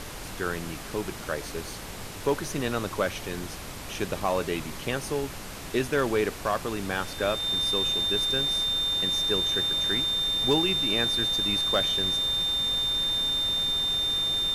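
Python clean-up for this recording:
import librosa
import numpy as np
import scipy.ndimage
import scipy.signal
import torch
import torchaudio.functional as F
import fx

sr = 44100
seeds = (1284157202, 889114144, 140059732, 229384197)

y = fx.fix_declip(x, sr, threshold_db=-15.5)
y = fx.notch(y, sr, hz=3600.0, q=30.0)
y = fx.noise_reduce(y, sr, print_start_s=1.73, print_end_s=2.23, reduce_db=30.0)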